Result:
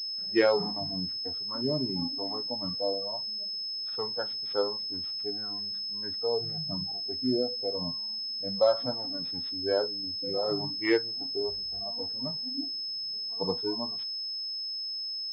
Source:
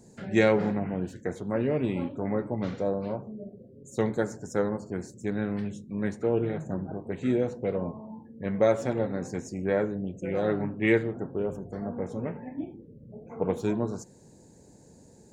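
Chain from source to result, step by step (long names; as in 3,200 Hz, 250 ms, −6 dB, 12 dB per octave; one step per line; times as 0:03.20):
noise reduction from a noise print of the clip's start 19 dB
switching amplifier with a slow clock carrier 5,200 Hz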